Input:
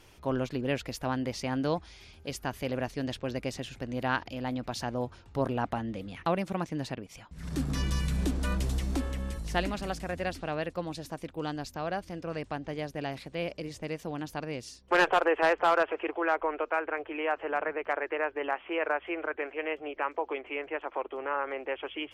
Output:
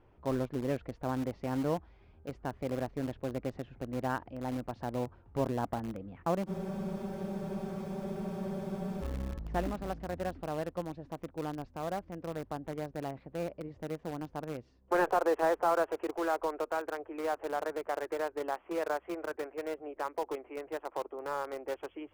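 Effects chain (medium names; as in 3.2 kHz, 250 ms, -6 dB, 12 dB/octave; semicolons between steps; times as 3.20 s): low-pass 1.1 kHz 12 dB/octave; in parallel at -11 dB: bit crusher 5-bit; on the sum: spectral freeze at 6.49 s, 2.54 s; trim -4 dB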